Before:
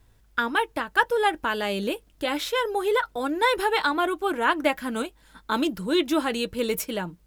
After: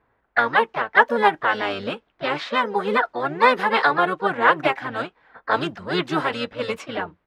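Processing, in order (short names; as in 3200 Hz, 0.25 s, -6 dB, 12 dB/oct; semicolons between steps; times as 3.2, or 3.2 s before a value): low-pass opened by the level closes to 1500 Hz, open at -19 dBFS; band-pass 1300 Hz, Q 0.81; harmoniser -12 st -5 dB, +3 st -8 dB, +4 st -15 dB; gain +5.5 dB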